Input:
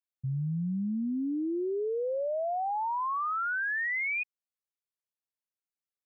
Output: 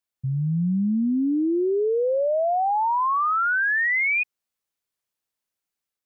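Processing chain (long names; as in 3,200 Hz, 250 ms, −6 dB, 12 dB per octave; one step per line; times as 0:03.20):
automatic gain control gain up to 3 dB
level +6 dB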